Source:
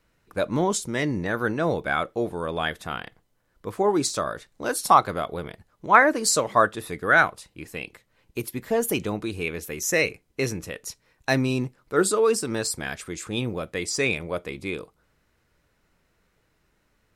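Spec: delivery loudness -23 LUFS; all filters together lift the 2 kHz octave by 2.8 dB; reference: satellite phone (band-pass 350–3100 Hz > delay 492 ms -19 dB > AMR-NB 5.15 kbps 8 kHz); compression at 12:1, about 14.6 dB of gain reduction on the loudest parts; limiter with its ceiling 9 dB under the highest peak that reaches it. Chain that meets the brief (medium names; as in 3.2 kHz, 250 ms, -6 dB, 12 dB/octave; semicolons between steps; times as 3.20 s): peaking EQ 2 kHz +4.5 dB; compression 12:1, threshold -23 dBFS; peak limiter -19 dBFS; band-pass 350–3100 Hz; delay 492 ms -19 dB; trim +12.5 dB; AMR-NB 5.15 kbps 8 kHz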